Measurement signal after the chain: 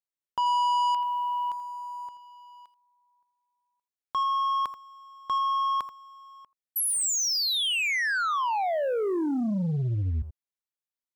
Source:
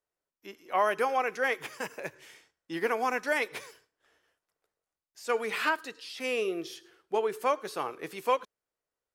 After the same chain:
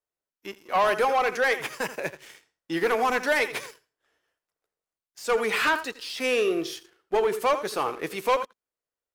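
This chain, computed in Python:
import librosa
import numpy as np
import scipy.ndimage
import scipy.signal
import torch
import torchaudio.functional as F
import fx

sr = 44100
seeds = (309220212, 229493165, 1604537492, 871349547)

y = x + 10.0 ** (-15.0 / 20.0) * np.pad(x, (int(83 * sr / 1000.0), 0))[:len(x)]
y = fx.leveller(y, sr, passes=2)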